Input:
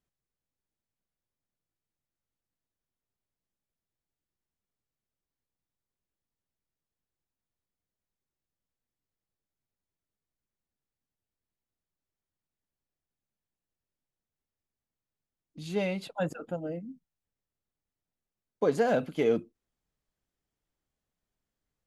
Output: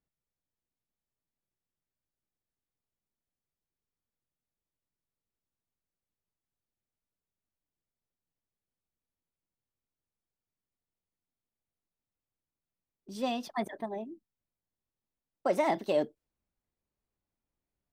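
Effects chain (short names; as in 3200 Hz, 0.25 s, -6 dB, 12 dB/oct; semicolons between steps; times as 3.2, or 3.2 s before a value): speed glide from 111% -> 133%; mismatched tape noise reduction decoder only; gain -2 dB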